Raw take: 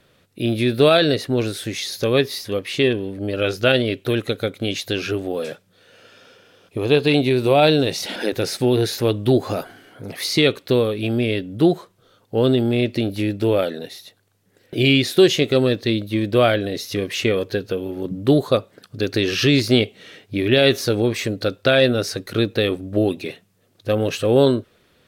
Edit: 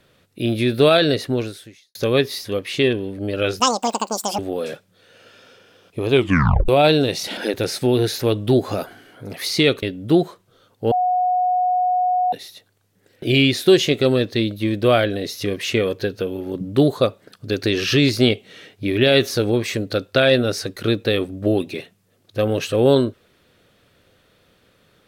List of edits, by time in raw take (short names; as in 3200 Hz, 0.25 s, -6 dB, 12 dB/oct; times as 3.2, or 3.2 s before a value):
1.31–1.95 fade out quadratic
3.6–5.17 speed 200%
6.9 tape stop 0.57 s
10.61–11.33 cut
12.42–13.83 bleep 729 Hz -15.5 dBFS